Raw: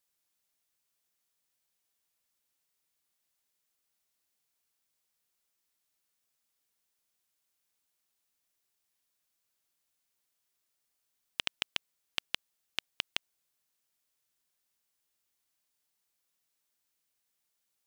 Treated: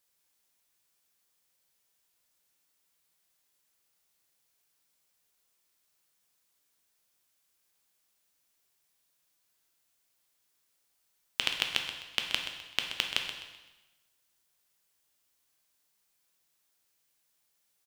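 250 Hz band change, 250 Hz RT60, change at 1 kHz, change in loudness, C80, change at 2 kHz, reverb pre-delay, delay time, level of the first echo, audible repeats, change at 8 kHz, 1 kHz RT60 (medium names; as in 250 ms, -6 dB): +5.0 dB, 1.1 s, +6.0 dB, +5.5 dB, 6.5 dB, +6.0 dB, 7 ms, 128 ms, -10.5 dB, 2, +6.0 dB, 1.1 s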